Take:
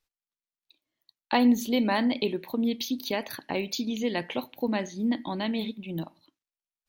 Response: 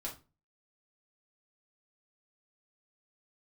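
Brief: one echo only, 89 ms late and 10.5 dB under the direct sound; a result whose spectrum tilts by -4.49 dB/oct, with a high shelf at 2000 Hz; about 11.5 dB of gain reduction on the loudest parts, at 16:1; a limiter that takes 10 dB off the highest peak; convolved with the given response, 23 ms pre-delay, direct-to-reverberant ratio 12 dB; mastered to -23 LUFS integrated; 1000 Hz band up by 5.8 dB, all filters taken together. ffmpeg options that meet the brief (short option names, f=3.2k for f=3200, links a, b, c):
-filter_complex "[0:a]equalizer=f=1k:t=o:g=6.5,highshelf=f=2k:g=4.5,acompressor=threshold=-27dB:ratio=16,alimiter=limit=-24dB:level=0:latency=1,aecho=1:1:89:0.299,asplit=2[a][b];[1:a]atrim=start_sample=2205,adelay=23[c];[b][c]afir=irnorm=-1:irlink=0,volume=-11.5dB[d];[a][d]amix=inputs=2:normalize=0,volume=11dB"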